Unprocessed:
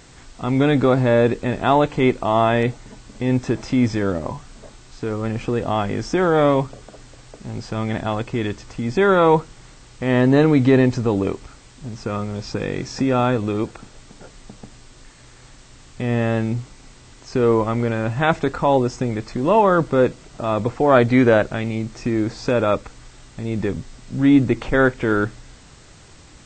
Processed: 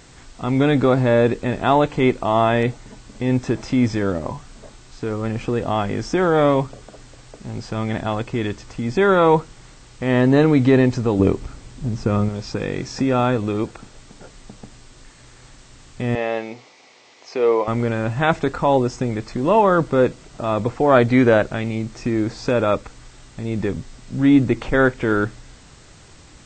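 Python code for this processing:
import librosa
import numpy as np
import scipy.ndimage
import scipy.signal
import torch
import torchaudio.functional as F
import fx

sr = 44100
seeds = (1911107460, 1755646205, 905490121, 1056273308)

y = fx.low_shelf(x, sr, hz=450.0, db=9.0, at=(11.19, 12.29))
y = fx.cabinet(y, sr, low_hz=450.0, low_slope=12, high_hz=6100.0, hz=(480.0, 720.0, 1500.0, 2200.0), db=(4, 4, -7, 6), at=(16.15, 17.68))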